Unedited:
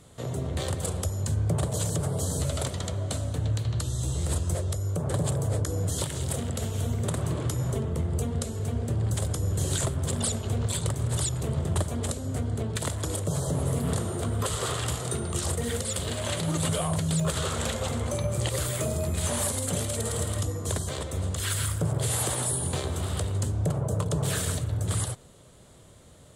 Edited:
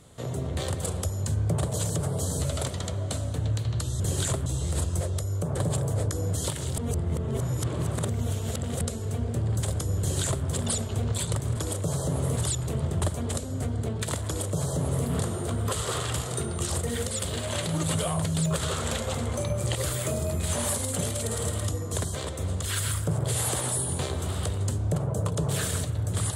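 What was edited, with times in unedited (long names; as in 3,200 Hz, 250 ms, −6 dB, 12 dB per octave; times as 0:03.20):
0:06.32–0:08.35: reverse
0:09.53–0:09.99: duplicate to 0:04.00
0:13.00–0:13.80: duplicate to 0:11.11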